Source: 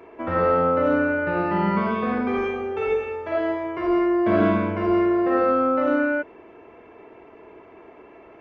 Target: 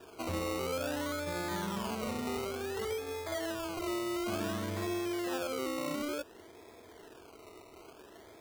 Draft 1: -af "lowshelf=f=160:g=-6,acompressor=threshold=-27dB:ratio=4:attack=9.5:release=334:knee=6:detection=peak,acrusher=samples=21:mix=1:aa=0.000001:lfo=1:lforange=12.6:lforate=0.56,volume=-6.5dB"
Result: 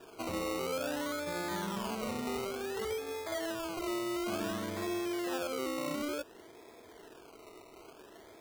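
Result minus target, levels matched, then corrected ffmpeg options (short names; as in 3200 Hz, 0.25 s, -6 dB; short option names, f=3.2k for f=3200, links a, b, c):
125 Hz band -4.5 dB
-af "lowshelf=f=160:g=-6,acompressor=threshold=-27dB:ratio=4:attack=9.5:release=334:knee=6:detection=peak,equalizer=f=82:t=o:w=0.73:g=11.5,acrusher=samples=21:mix=1:aa=0.000001:lfo=1:lforange=12.6:lforate=0.56,volume=-6.5dB"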